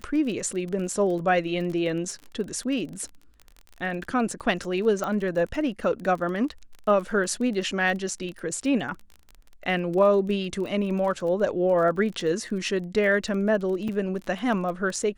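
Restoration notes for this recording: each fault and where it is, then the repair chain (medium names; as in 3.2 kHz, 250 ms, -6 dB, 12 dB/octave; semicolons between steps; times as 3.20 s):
crackle 28 per s -33 dBFS
5.04 s: pop -16 dBFS
13.88–13.89 s: dropout 5.8 ms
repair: de-click; interpolate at 13.88 s, 5.8 ms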